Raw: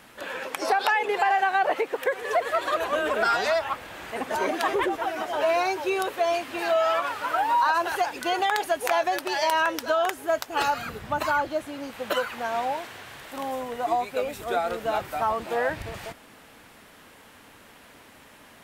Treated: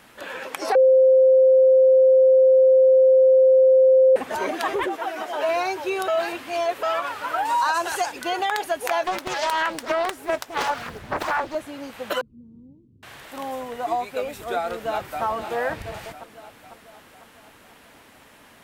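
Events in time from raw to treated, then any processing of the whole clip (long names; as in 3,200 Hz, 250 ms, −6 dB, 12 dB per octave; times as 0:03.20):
0:00.75–0:04.16: beep over 523 Hz −11 dBFS
0:04.86–0:05.49: high-pass filter 220 Hz
0:06.08–0:06.83: reverse
0:07.45–0:08.12: parametric band 7,700 Hz +11.5 dB 1.2 octaves
0:09.04–0:11.55: highs frequency-modulated by the lows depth 0.83 ms
0:12.21–0:13.03: inverse Chebyshev low-pass filter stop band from 660 Hz, stop band 50 dB
0:14.69–0:15.23: delay throw 500 ms, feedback 55%, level −8 dB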